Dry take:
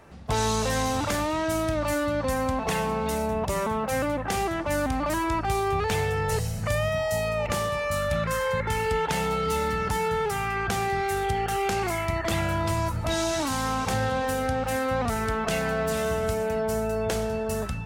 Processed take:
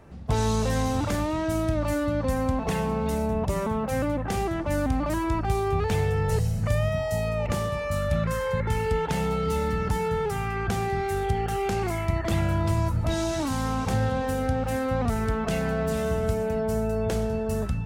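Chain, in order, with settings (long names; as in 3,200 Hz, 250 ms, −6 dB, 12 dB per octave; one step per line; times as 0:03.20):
low-shelf EQ 450 Hz +10 dB
level −5 dB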